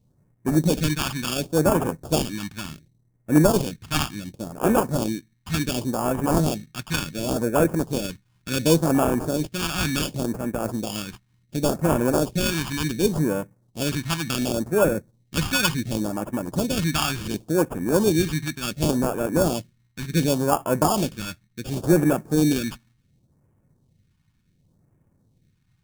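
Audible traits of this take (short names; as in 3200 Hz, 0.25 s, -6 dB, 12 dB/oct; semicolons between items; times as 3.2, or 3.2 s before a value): aliases and images of a low sample rate 2000 Hz, jitter 0%; phasing stages 2, 0.69 Hz, lowest notch 480–3900 Hz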